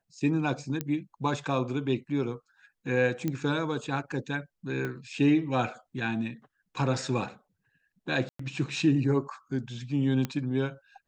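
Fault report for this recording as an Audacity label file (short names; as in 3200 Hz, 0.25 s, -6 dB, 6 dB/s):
0.810000	0.810000	pop -16 dBFS
3.280000	3.280000	pop -17 dBFS
4.850000	4.850000	pop -21 dBFS
8.290000	8.390000	gap 0.104 s
10.250000	10.250000	pop -17 dBFS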